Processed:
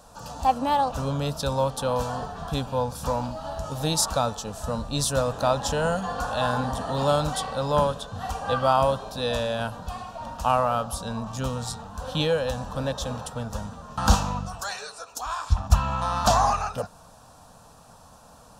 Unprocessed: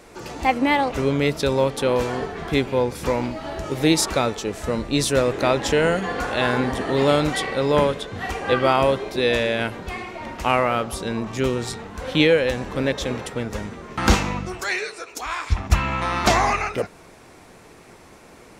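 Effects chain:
phaser with its sweep stopped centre 880 Hz, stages 4

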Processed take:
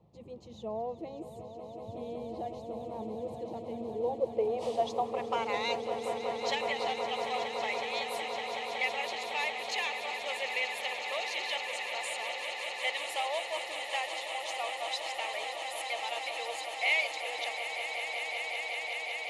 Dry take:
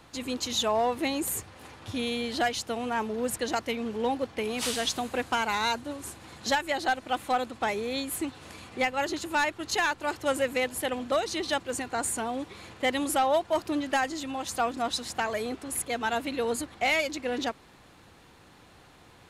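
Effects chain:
band-pass filter sweep 200 Hz → 2,200 Hz, 0:03.66–0:05.72
phaser with its sweep stopped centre 630 Hz, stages 4
echo that builds up and dies away 186 ms, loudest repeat 8, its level −11 dB
level +7 dB

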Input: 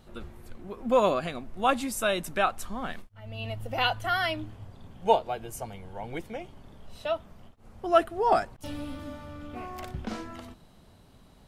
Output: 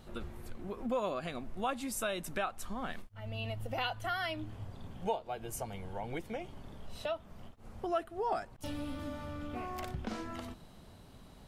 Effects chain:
downward compressor 2.5 to 1, threshold −38 dBFS, peak gain reduction 15.5 dB
level +1 dB

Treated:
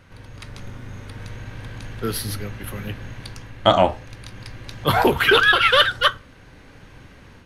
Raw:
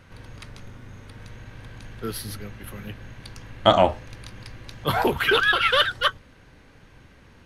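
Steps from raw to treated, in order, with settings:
automatic gain control gain up to 6 dB
on a send: convolution reverb RT60 0.30 s, pre-delay 3 ms, DRR 16 dB

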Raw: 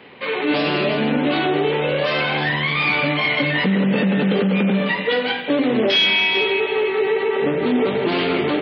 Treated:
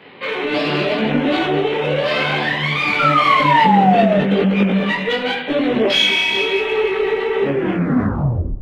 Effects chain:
turntable brake at the end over 1.17 s
sound drawn into the spectrogram fall, 0:02.99–0:04.19, 600–1,400 Hz −16 dBFS
in parallel at −6 dB: asymmetric clip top −21 dBFS
on the sum: feedback echo with a low-pass in the loop 103 ms, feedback 61%, low-pass 1,500 Hz, level −17.5 dB
micro pitch shift up and down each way 30 cents
level +2 dB

